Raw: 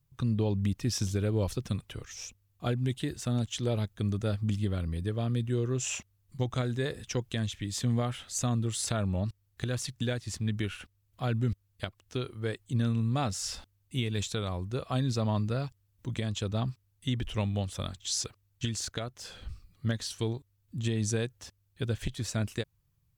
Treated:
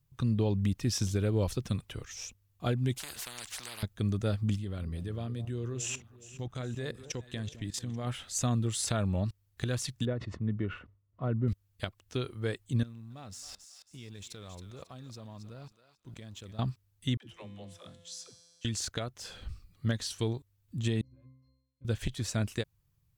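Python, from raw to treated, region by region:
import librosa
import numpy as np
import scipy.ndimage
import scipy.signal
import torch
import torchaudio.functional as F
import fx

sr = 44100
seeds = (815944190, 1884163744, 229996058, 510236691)

y = fx.chain(x, sr, fx.peak_eq(hz=350.0, db=-8.5, octaves=1.1),
    fx.spectral_comp(ratio=10.0), at=(2.96, 3.83))
y = fx.chain(y, sr, fx.level_steps(step_db=18),
    fx.echo_alternate(ms=209, hz=960.0, feedback_pct=64, wet_db=-12.5), at=(4.56, 8.07))
y = fx.chain(y, sr, fx.lowpass(hz=1200.0, slope=12),
    fx.notch_comb(f0_hz=800.0),
    fx.sustainer(db_per_s=130.0), at=(10.05, 11.48))
y = fx.chain(y, sr, fx.law_mismatch(coded='A'),
    fx.level_steps(step_db=23),
    fx.echo_thinned(ms=272, feedback_pct=36, hz=1100.0, wet_db=-8.0), at=(12.83, 16.59))
y = fx.chain(y, sr, fx.highpass(hz=130.0, slope=12),
    fx.comb_fb(f0_hz=170.0, decay_s=1.9, harmonics='all', damping=0.0, mix_pct=80),
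    fx.dispersion(late='lows', ms=92.0, hz=300.0), at=(17.17, 18.65))
y = fx.chain(y, sr, fx.peak_eq(hz=8500.0, db=-14.0, octaves=0.7),
    fx.level_steps(step_db=17),
    fx.octave_resonator(note='C', decay_s=0.76), at=(21.01, 21.85))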